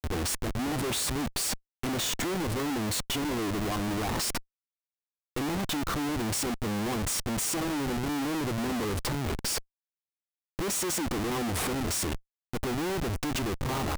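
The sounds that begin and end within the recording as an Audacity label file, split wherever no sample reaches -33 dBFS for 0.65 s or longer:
5.360000	9.590000	sound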